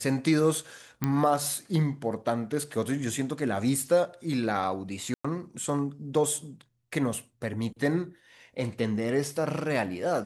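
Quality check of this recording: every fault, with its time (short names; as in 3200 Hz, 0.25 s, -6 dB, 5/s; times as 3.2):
1.04 pop -13 dBFS
5.14–5.25 gap 0.105 s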